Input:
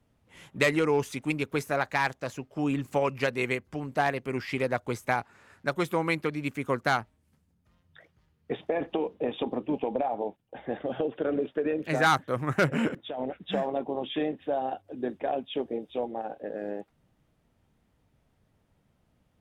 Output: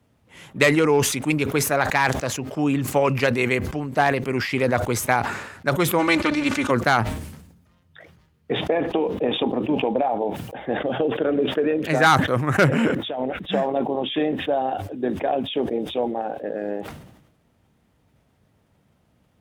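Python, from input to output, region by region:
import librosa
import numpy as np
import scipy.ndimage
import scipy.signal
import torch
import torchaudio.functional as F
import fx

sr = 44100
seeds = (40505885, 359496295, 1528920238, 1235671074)

y = fx.spec_flatten(x, sr, power=0.69, at=(5.98, 6.7), fade=0.02)
y = fx.air_absorb(y, sr, metres=84.0, at=(5.98, 6.7), fade=0.02)
y = fx.comb(y, sr, ms=3.4, depth=0.78, at=(5.98, 6.7), fade=0.02)
y = scipy.signal.sosfilt(scipy.signal.butter(2, 60.0, 'highpass', fs=sr, output='sos'), y)
y = fx.sustainer(y, sr, db_per_s=60.0)
y = y * 10.0 ** (6.5 / 20.0)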